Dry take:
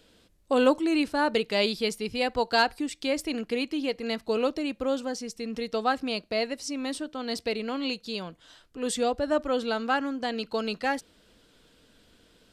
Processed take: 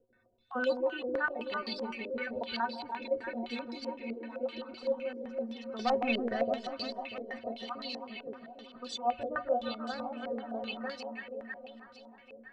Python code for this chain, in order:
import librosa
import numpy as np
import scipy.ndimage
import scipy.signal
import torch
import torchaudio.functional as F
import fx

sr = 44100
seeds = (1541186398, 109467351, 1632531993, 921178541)

y = fx.spec_dropout(x, sr, seeds[0], share_pct=36)
y = fx.leveller(y, sr, passes=3, at=(5.79, 6.42))
y = fx.stiff_resonator(y, sr, f0_hz=110.0, decay_s=0.23, stiffness=0.03)
y = fx.echo_alternate(y, sr, ms=160, hz=840.0, feedback_pct=82, wet_db=-4.0)
y = fx.filter_held_lowpass(y, sr, hz=7.8, low_hz=480.0, high_hz=4700.0)
y = F.gain(torch.from_numpy(y), -3.0).numpy()